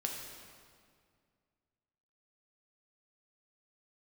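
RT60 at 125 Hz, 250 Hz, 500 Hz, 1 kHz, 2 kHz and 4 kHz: 2.5, 2.4, 2.2, 2.0, 1.8, 1.6 s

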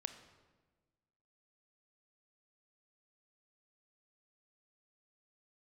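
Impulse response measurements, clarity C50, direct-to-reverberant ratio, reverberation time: 10.5 dB, 9.0 dB, 1.3 s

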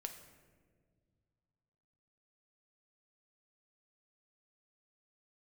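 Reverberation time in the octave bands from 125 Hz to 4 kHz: 3.0, 2.6, 2.2, 1.4, 1.2, 0.85 s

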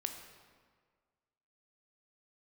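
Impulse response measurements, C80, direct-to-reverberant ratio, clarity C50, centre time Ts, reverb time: 8.0 dB, 5.0 dB, 7.0 dB, 31 ms, 1.7 s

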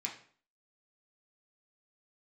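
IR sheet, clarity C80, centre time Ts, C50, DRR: 12.5 dB, 21 ms, 8.5 dB, -2.0 dB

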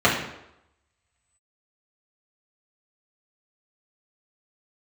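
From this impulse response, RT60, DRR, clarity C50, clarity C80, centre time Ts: 0.85 s, -7.5 dB, 5.0 dB, 8.0 dB, 37 ms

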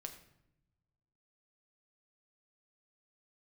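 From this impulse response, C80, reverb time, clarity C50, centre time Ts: 12.0 dB, 0.80 s, 10.0 dB, 14 ms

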